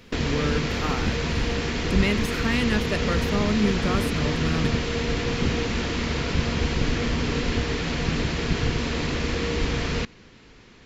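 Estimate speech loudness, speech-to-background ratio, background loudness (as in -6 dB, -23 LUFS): -28.0 LUFS, -2.0 dB, -26.0 LUFS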